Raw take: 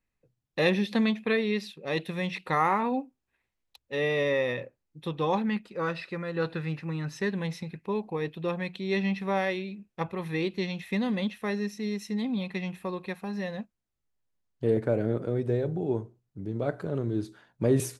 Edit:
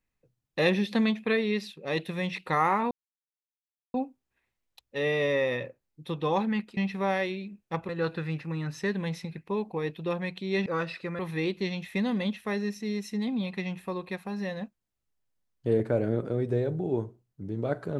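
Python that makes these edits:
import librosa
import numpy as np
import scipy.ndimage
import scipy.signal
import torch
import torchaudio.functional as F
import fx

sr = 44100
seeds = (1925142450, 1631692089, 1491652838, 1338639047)

y = fx.edit(x, sr, fx.insert_silence(at_s=2.91, length_s=1.03),
    fx.swap(start_s=5.74, length_s=0.53, other_s=9.04, other_length_s=1.12), tone=tone)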